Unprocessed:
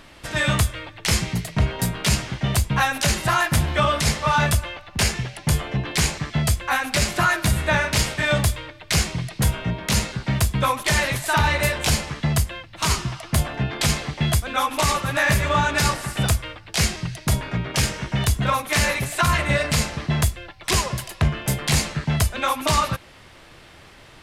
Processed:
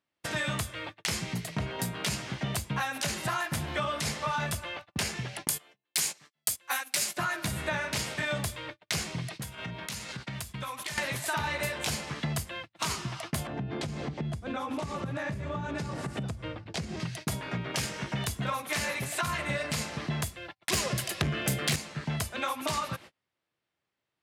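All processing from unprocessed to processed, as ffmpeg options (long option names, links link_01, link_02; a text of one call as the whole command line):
ffmpeg -i in.wav -filter_complex "[0:a]asettb=1/sr,asplit=3[link_01][link_02][link_03];[link_01]atrim=end=5.474[link_04];[link_02]atrim=start=5.47:end=7.17,asetpts=PTS-STARTPTS,afade=type=in:duration=0.004:curve=qsin,afade=type=out:start_time=1.696:duration=0.004:curve=qsin,highpass=frequency=370:poles=1,aemphasis=mode=production:type=75kf,agate=range=-18dB:threshold=-23dB:ratio=16:release=100:detection=peak[link_05];[link_03]atrim=start=7.166[link_06];[link_04][link_05]acrossfade=duration=0.004:curve1=hsin:curve2=qsin[link_07];[link_07][link_06]acrossfade=duration=0.004:curve1=qsin:curve2=hsin,asettb=1/sr,asplit=3[link_08][link_09][link_10];[link_08]atrim=end=9.354[link_11];[link_09]atrim=start=9.35:end=10.98,asetpts=PTS-STARTPTS,afade=type=in:duration=0.004:curve=qsin,afade=type=out:start_time=1.626:duration=0.004:curve=qsin,equalizer=frequency=350:width_type=o:width=2.9:gain=-7,acompressor=threshold=-31dB:ratio=16:attack=3.2:release=140:knee=1:detection=peak[link_12];[link_10]atrim=start=10.976[link_13];[link_11][link_12]acrossfade=duration=0.004:curve1=hsin:curve2=qsin[link_14];[link_14][link_13]acrossfade=duration=0.004:curve1=qsin:curve2=hsin,asettb=1/sr,asplit=3[link_15][link_16][link_17];[link_15]atrim=end=13.474[link_18];[link_16]atrim=start=13.47:end=17,asetpts=PTS-STARTPTS,afade=type=in:duration=0.004:curve=qsin,afade=type=out:start_time=3.526:duration=0.004:curve=qsin,lowpass=8500,tiltshelf=frequency=640:gain=8.5,acompressor=threshold=-25dB:ratio=6:attack=3.2:release=140:knee=1:detection=peak[link_19];[link_17]atrim=start=16.996[link_20];[link_18][link_19]acrossfade=duration=0.004:curve1=hsin:curve2=qsin[link_21];[link_21][link_20]acrossfade=duration=0.004:curve1=qsin:curve2=hsin,asettb=1/sr,asplit=3[link_22][link_23][link_24];[link_22]atrim=end=20.734[link_25];[link_23]atrim=start=20.73:end=21.76,asetpts=PTS-STARTPTS,afade=type=in:duration=0.004:curve=qsin,afade=type=out:start_time=1.026:duration=0.004:curve=qsin,equalizer=frequency=940:width_type=o:width=0.32:gain=-11.5,acontrast=52,aeval=exprs='0.631*sin(PI/2*1.41*val(0)/0.631)':channel_layout=same[link_26];[link_24]atrim=start=21.756[link_27];[link_25][link_26]acrossfade=duration=0.004:curve1=hsin:curve2=qsin[link_28];[link_28][link_27]acrossfade=duration=0.004:curve1=qsin:curve2=hsin,agate=range=-38dB:threshold=-37dB:ratio=16:detection=peak,highpass=120,acompressor=threshold=-32dB:ratio=3" out.wav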